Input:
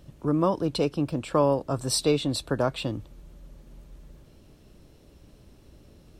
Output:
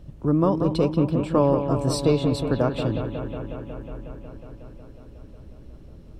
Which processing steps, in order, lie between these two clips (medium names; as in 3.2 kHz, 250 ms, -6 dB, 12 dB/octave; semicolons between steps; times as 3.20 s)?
tilt EQ -2 dB/octave; bucket-brigade echo 182 ms, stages 4096, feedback 80%, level -8.5 dB